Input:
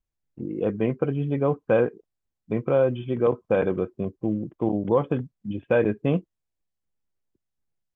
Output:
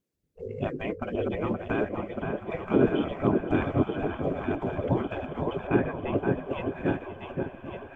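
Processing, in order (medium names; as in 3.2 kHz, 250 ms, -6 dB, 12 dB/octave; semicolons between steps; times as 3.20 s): backward echo that repeats 576 ms, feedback 64%, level -7.5 dB; 5.67–6.18 s: low-pass 2.3 kHz 12 dB/octave; filtered feedback delay 520 ms, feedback 18%, low-pass 1.1 kHz, level -5 dB; peak limiter -14.5 dBFS, peak gain reduction 6.5 dB; echo that smears into a reverb 927 ms, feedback 53%, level -13 dB; spectral gate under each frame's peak -15 dB weak; resonant low shelf 610 Hz +10 dB, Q 1.5; harmonic-percussive split percussive +6 dB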